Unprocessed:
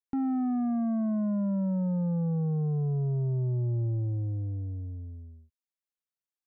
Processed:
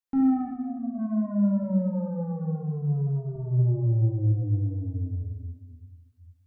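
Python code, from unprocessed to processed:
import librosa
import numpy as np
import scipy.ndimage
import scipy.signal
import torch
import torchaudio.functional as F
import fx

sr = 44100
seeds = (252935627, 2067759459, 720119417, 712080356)

y = fx.rider(x, sr, range_db=5, speed_s=2.0)
y = fx.double_bandpass(y, sr, hz=460.0, octaves=0.76, at=(0.47, 0.98), fade=0.02)
y = fx.comb(y, sr, ms=3.4, depth=0.49, at=(1.62, 3.36))
y = fx.room_shoebox(y, sr, seeds[0], volume_m3=870.0, walls='mixed', distance_m=2.1)
y = y * librosa.db_to_amplitude(-1.5)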